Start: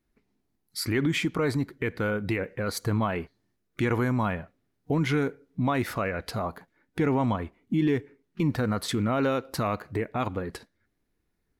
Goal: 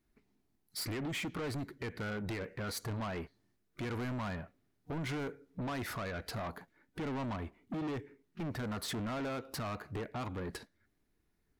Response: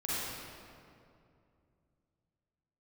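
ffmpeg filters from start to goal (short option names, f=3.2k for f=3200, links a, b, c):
-af "alimiter=limit=-20.5dB:level=0:latency=1:release=283,bandreject=f=510:w=12,asoftclip=type=tanh:threshold=-34dB,volume=-1dB"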